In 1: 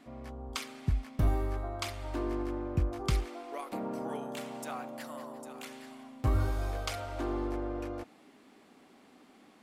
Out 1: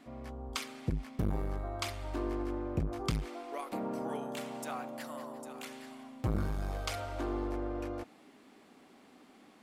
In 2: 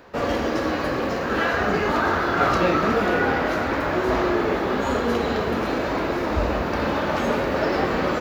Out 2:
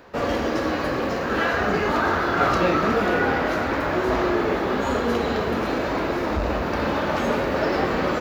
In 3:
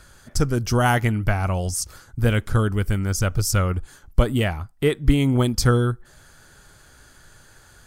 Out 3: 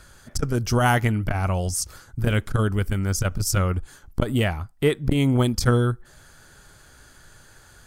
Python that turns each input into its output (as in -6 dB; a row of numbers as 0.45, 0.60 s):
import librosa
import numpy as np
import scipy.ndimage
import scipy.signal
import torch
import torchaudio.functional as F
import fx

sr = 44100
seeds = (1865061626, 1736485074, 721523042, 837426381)

y = fx.transformer_sat(x, sr, knee_hz=230.0)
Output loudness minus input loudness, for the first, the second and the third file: -2.0, 0.0, -1.5 LU